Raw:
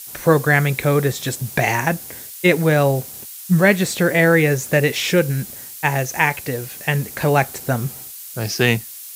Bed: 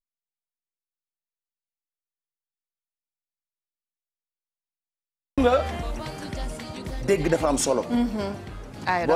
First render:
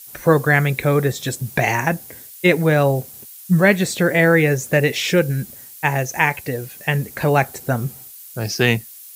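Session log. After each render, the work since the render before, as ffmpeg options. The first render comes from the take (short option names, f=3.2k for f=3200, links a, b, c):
-af "afftdn=nr=7:nf=-36"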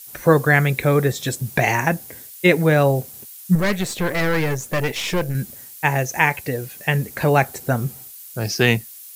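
-filter_complex "[0:a]asettb=1/sr,asplit=3[a][b][c];[a]atrim=end=3.554[d];[b]atrim=start=3.55:end=5.35,asetpts=PTS-STARTPTS,afade=t=in:d=0.004:c=qsin,afade=t=out:st=1.796:d=0.004:c=qsin,aeval=exprs='(tanh(6.31*val(0)+0.65)-tanh(0.65))/6.31':c=same[e];[c]atrim=start=5.346[f];[d][e]acrossfade=d=0.004:c1=hsin:c2=qsin[g];[g][f]acrossfade=d=0.004:c1=qsin:c2=hsin"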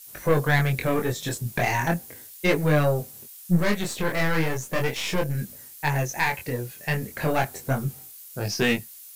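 -af "aeval=exprs='(tanh(3.16*val(0)+0.4)-tanh(0.4))/3.16':c=same,flanger=delay=20:depth=5.4:speed=0.36"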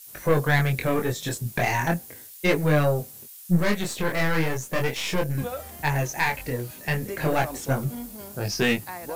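-filter_complex "[1:a]volume=-13.5dB[a];[0:a][a]amix=inputs=2:normalize=0"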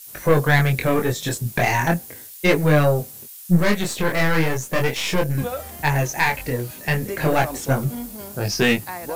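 -af "volume=4.5dB"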